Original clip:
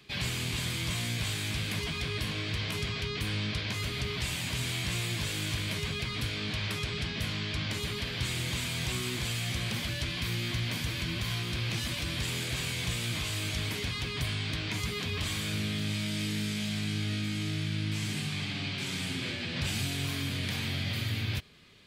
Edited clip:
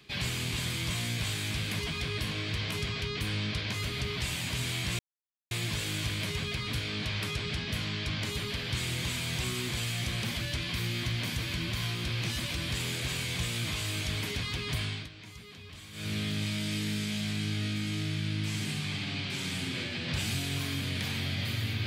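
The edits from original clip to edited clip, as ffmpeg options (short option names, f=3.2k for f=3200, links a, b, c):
-filter_complex "[0:a]asplit=4[a][b][c][d];[a]atrim=end=4.99,asetpts=PTS-STARTPTS,afade=t=out:st=4.986:d=0.004:c=hsin,apad=pad_dur=0.52[e];[b]atrim=start=4.99:end=14.57,asetpts=PTS-STARTPTS,afade=t=in:d=0.004:c=hsin,afade=t=out:st=9.27:d=0.31:c=qsin:silence=0.188365[f];[c]atrim=start=14.57:end=15.4,asetpts=PTS-STARTPTS,volume=-14.5dB[g];[d]atrim=start=15.4,asetpts=PTS-STARTPTS,afade=t=in:d=0.31:c=qsin:silence=0.188365[h];[e][f][g][h]concat=n=4:v=0:a=1"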